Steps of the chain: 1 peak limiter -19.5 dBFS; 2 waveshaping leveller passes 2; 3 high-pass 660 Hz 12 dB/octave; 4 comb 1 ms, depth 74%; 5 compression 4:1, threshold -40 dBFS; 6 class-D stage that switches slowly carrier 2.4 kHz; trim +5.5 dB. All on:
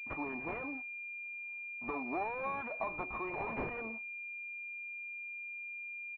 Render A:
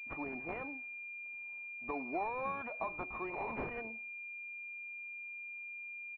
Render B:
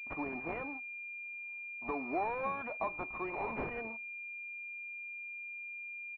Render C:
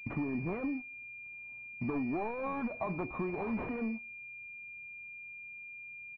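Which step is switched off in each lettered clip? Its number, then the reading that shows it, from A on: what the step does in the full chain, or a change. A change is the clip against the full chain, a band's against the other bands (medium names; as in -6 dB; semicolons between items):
2, momentary loudness spread change +1 LU; 1, momentary loudness spread change +2 LU; 3, 125 Hz band +10.0 dB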